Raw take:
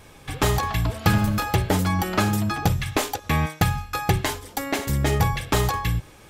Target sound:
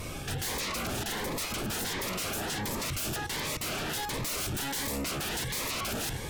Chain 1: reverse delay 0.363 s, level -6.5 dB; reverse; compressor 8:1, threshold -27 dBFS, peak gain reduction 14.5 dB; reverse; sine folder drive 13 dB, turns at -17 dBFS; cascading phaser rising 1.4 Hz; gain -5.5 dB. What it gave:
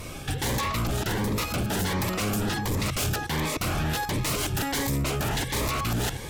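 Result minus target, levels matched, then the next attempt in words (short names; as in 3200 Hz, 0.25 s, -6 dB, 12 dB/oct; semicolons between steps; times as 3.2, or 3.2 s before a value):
sine folder: distortion -20 dB
reverse delay 0.363 s, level -6.5 dB; reverse; compressor 8:1, threshold -27 dBFS, peak gain reduction 14.5 dB; reverse; sine folder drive 13 dB, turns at -23.5 dBFS; cascading phaser rising 1.4 Hz; gain -5.5 dB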